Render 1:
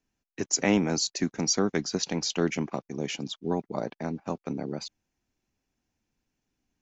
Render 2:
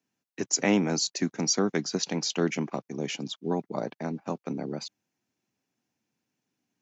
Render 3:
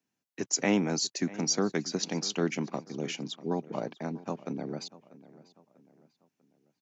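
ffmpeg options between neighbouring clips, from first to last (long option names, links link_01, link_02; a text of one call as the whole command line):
ffmpeg -i in.wav -af "highpass=frequency=120:width=0.5412,highpass=frequency=120:width=1.3066" out.wav
ffmpeg -i in.wav -filter_complex "[0:a]asplit=2[link_01][link_02];[link_02]adelay=643,lowpass=frequency=3500:poles=1,volume=-18.5dB,asplit=2[link_03][link_04];[link_04]adelay=643,lowpass=frequency=3500:poles=1,volume=0.41,asplit=2[link_05][link_06];[link_06]adelay=643,lowpass=frequency=3500:poles=1,volume=0.41[link_07];[link_01][link_03][link_05][link_07]amix=inputs=4:normalize=0,volume=-2.5dB" out.wav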